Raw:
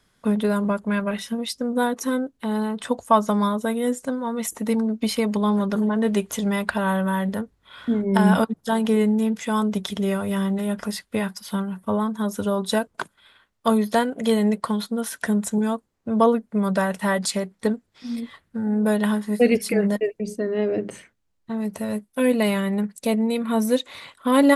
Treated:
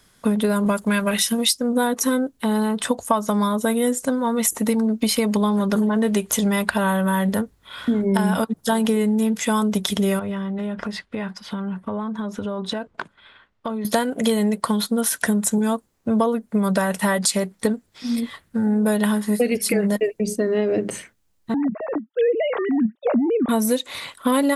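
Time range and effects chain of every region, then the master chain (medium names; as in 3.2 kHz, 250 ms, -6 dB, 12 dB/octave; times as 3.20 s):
0.66–1.59 s: expander -42 dBFS + treble shelf 2.7 kHz +10.5 dB
10.19–13.85 s: low-pass 2.9 kHz + compression 12:1, threshold -29 dBFS
21.54–23.49 s: formants replaced by sine waves + peaking EQ 2.5 kHz -13.5 dB 1.2 oct
whole clip: treble shelf 6 kHz +8 dB; compression 10:1, threshold -22 dBFS; trim +6 dB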